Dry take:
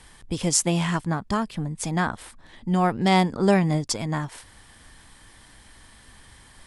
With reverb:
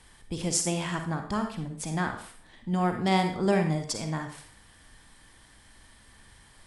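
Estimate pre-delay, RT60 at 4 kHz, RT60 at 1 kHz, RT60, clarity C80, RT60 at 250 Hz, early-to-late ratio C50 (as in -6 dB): 37 ms, 0.45 s, 0.45 s, 0.45 s, 10.5 dB, 0.50 s, 6.5 dB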